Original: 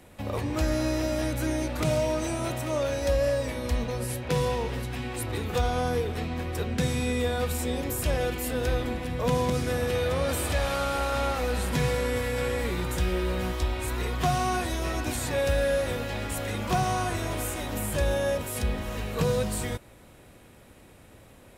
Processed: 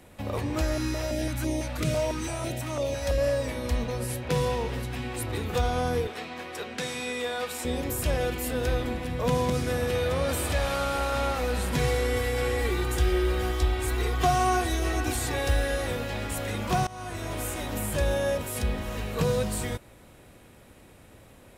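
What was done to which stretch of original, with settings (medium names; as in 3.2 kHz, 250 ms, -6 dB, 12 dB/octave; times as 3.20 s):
0.61–3.18 s: step-sequenced notch 6 Hz 200–1500 Hz
6.07–7.65 s: frequency weighting A
11.78–15.87 s: comb 2.6 ms
16.87–17.70 s: fade in equal-power, from -21 dB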